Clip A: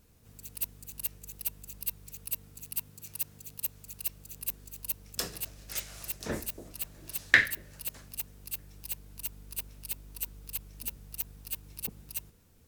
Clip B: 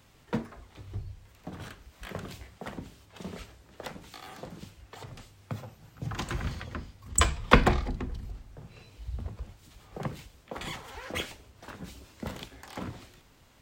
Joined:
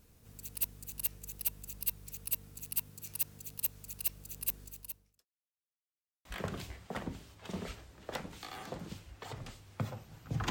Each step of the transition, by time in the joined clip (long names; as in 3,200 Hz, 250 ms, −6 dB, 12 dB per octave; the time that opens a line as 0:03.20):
clip A
0:04.62–0:05.26: fade out quadratic
0:05.26–0:06.25: silence
0:06.25: continue with clip B from 0:01.96